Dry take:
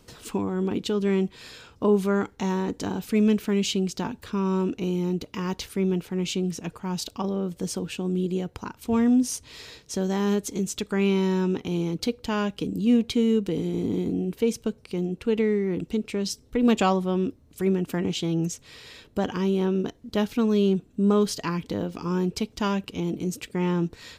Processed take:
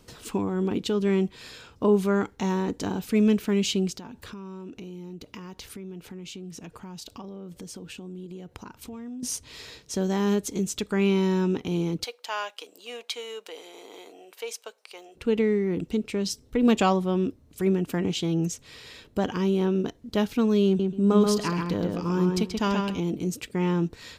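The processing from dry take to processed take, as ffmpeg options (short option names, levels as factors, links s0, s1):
-filter_complex "[0:a]asettb=1/sr,asplit=3[s0][s1][s2];[s0]atrim=end=3.954[s3];[s1]atrim=start=3.95:end=9.23,asetpts=PTS-STARTPTS,afade=t=in:d=0.004:c=qsin,afade=t=out:st=5.276:d=0.004:c=qsin,acompressor=threshold=0.0141:ratio=6:attack=3.2:release=140:knee=1:detection=peak[s4];[s2]atrim=start=9.226[s5];[s3][s4]acrossfade=d=0.004:c1=hsin:c2=qsin[s6];[s6][s5]acrossfade=d=0.004:c1=qsin:c2=hsin,asplit=3[s7][s8][s9];[s7]afade=t=out:st=12.03:d=0.02[s10];[s8]highpass=f=630:w=0.5412,highpass=f=630:w=1.3066,afade=t=in:st=12.03:d=0.02,afade=t=out:st=15.15:d=0.02[s11];[s9]afade=t=in:st=15.15:d=0.02[s12];[s10][s11][s12]amix=inputs=3:normalize=0,asettb=1/sr,asplit=3[s13][s14][s15];[s13]atrim=end=20.664[s16];[s14]atrim=start=20.66:end=22.99,asetpts=PTS-STARTPTS,afade=t=in:d=0.004:c=qsin,afade=t=out:st=2.326:d=0.004:c=qsin,asplit=2[s17][s18];[s18]adelay=132,lowpass=f=4300:p=1,volume=0.668,asplit=2[s19][s20];[s20]adelay=132,lowpass=f=4300:p=1,volume=0.2,asplit=2[s21][s22];[s22]adelay=132,lowpass=f=4300:p=1,volume=0.2[s23];[s17][s19][s21][s23]amix=inputs=4:normalize=0,atrim=end_sample=102753[s24];[s15]atrim=start=22.986[s25];[s16][s24]acrossfade=d=0.004:c1=hsin:c2=qsin[s26];[s26][s25]acrossfade=d=0.004:c1=qsin:c2=hsin"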